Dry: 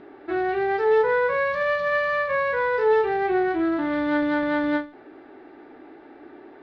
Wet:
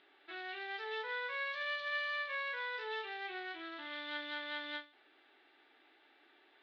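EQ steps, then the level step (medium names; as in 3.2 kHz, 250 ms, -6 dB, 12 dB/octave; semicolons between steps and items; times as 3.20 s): band-pass filter 3.4 kHz, Q 2.9; +1.0 dB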